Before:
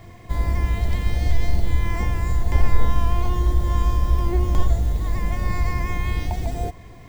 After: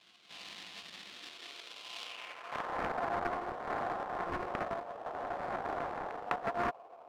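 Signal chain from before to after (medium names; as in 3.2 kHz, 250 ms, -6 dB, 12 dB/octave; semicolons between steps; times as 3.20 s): high-pass sweep 190 Hz -> 530 Hz, 0.96–1.81 s; sample-rate reducer 1.8 kHz, jitter 20%; band-pass sweep 3.5 kHz -> 770 Hz, 2.02–2.87 s; loudspeaker Doppler distortion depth 0.75 ms; trim -2 dB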